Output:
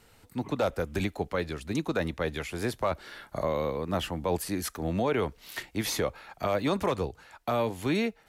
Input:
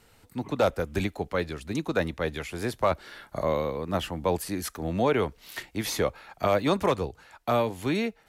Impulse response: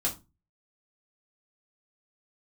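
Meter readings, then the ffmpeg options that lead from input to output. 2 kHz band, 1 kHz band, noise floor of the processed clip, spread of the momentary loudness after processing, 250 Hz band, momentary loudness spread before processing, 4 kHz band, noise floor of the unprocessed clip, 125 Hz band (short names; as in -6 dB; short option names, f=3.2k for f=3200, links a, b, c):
-2.0 dB, -3.0 dB, -61 dBFS, 7 LU, -1.0 dB, 9 LU, -1.0 dB, -61 dBFS, -1.5 dB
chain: -af "alimiter=limit=-18dB:level=0:latency=1:release=51"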